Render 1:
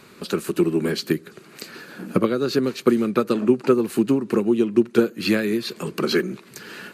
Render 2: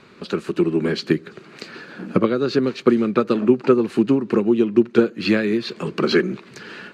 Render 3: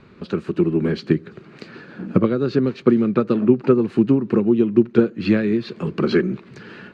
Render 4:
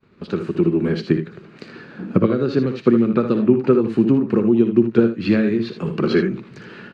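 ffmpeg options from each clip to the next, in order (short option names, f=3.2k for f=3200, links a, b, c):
-af "lowpass=4.4k,dynaudnorm=f=640:g=3:m=6.5dB"
-af "aemphasis=mode=reproduction:type=bsi,volume=-3dB"
-filter_complex "[0:a]agate=range=-33dB:threshold=-41dB:ratio=3:detection=peak,asplit=2[a][b];[b]aecho=0:1:60|78:0.299|0.316[c];[a][c]amix=inputs=2:normalize=0"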